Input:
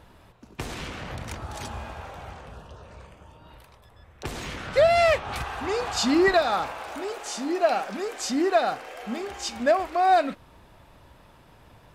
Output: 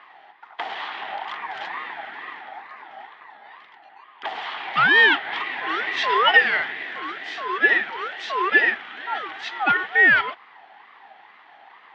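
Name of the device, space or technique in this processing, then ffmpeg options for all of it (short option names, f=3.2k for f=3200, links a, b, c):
voice changer toy: -af "aeval=exprs='val(0)*sin(2*PI*930*n/s+930*0.25/2.2*sin(2*PI*2.2*n/s))':c=same,highpass=420,equalizer=f=540:t=q:w=4:g=-9,equalizer=f=790:t=q:w=4:g=9,equalizer=f=1.9k:t=q:w=4:g=9,equalizer=f=3.2k:t=q:w=4:g=7,lowpass=f=3.8k:w=0.5412,lowpass=f=3.8k:w=1.3066,volume=3.5dB"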